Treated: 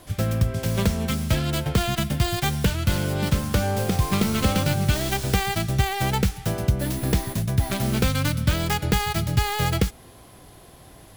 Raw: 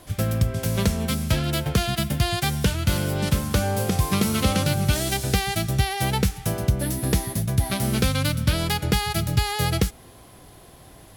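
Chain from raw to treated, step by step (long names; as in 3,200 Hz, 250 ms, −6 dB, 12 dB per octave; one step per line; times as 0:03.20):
stylus tracing distortion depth 0.16 ms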